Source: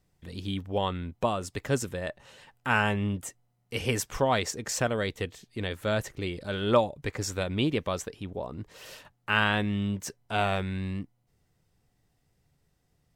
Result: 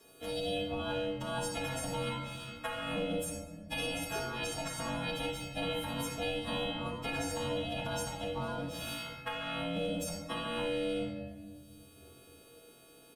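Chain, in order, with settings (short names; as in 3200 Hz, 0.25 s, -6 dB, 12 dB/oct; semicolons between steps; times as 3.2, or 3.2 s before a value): frequency quantiser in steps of 3 st; high shelf 11000 Hz -8.5 dB; comb 3.8 ms, depth 41%; sample leveller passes 1; negative-ratio compressor -27 dBFS, ratio -1; ring modulator 390 Hz; resonator 95 Hz, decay 0.17 s, harmonics odd, mix 70%; shoebox room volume 410 m³, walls mixed, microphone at 1.6 m; three-band squash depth 70%; gain -4.5 dB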